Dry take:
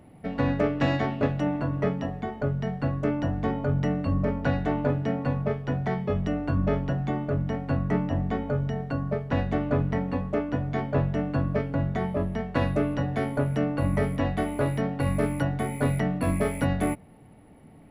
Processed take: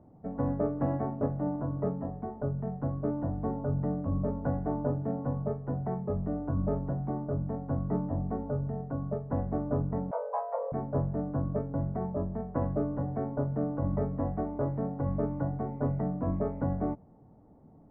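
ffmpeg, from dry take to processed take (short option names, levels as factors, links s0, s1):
-filter_complex "[0:a]asettb=1/sr,asplit=3[s0][s1][s2];[s0]atrim=end=10.114[s3];[s1]atrim=start=10.11:end=10.72,asetpts=PTS-STARTPTS,afade=t=in:d=0.004:c=qsin,afade=t=out:st=0.606:d=0.004:c=qsin,afreqshift=400[s4];[s2]atrim=start=10.716[s5];[s3][s4]acrossfade=d=0.004:c1=hsin:c2=qsin[s6];[s6][s5]acrossfade=d=0.004:c1=qsin:c2=hsin,lowpass=f=1100:w=0.5412,lowpass=f=1100:w=1.3066,volume=0.562"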